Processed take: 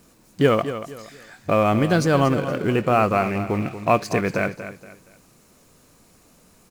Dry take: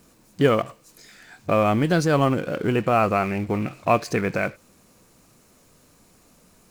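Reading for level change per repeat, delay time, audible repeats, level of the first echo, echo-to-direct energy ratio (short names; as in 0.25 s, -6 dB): -10.0 dB, 0.235 s, 3, -11.5 dB, -11.0 dB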